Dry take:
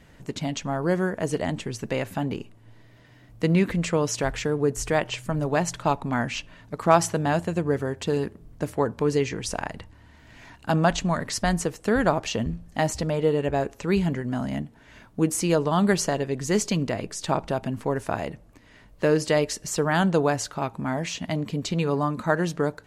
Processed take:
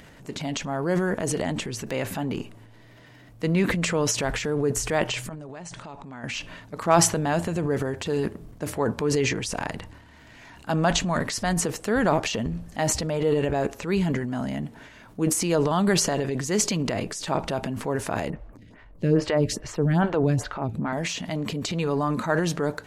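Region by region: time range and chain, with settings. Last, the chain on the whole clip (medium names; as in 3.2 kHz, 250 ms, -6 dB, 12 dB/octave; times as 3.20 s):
5.29–6.24 s: compression 10:1, threshold -34 dBFS + Chebyshev low-pass 9.8 kHz, order 8
18.30–20.93 s: tone controls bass +12 dB, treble -9 dB + lamp-driven phase shifter 2.4 Hz
whole clip: bass shelf 110 Hz -6.5 dB; upward compressor, threshold -44 dBFS; transient shaper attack -3 dB, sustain +9 dB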